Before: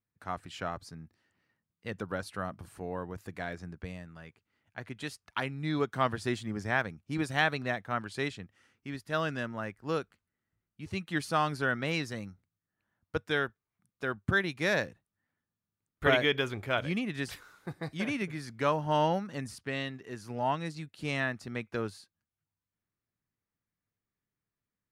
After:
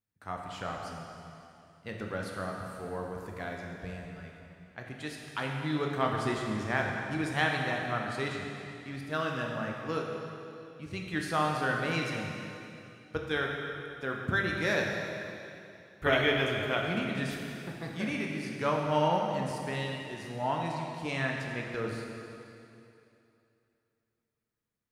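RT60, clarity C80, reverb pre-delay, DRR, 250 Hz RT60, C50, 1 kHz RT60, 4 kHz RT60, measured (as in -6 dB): 2.8 s, 2.5 dB, 6 ms, -0.5 dB, 2.8 s, 1.5 dB, 2.8 s, 2.6 s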